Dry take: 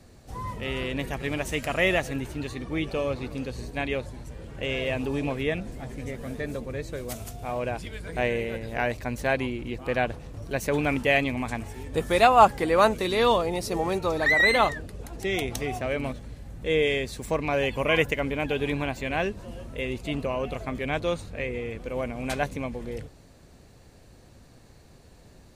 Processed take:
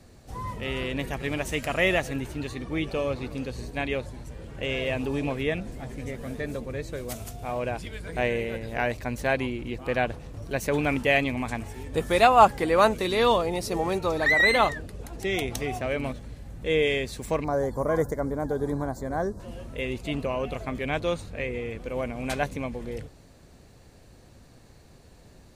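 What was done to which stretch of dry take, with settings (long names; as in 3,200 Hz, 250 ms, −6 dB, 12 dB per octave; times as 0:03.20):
0:17.44–0:19.40: Butterworth band-reject 2,700 Hz, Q 0.69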